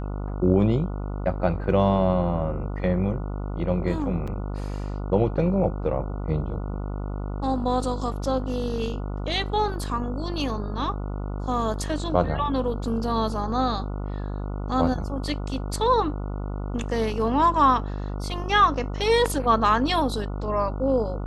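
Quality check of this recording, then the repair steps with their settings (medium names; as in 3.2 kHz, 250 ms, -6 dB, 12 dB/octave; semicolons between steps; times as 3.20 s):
buzz 50 Hz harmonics 29 -30 dBFS
4.27–4.28 s: dropout 5.7 ms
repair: de-hum 50 Hz, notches 29; interpolate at 4.27 s, 5.7 ms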